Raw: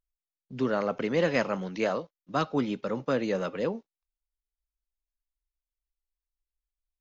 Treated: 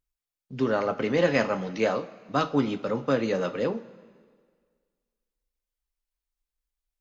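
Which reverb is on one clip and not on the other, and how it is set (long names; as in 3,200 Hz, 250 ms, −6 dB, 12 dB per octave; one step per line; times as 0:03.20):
coupled-rooms reverb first 0.21 s, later 1.8 s, from −18 dB, DRR 6.5 dB
level +2 dB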